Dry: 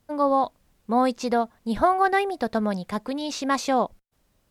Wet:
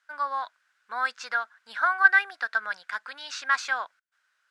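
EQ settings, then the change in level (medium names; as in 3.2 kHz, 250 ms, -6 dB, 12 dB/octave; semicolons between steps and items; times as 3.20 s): resonant high-pass 1.5 kHz, resonance Q 7.9; distance through air 95 m; treble shelf 5.4 kHz +9 dB; -4.0 dB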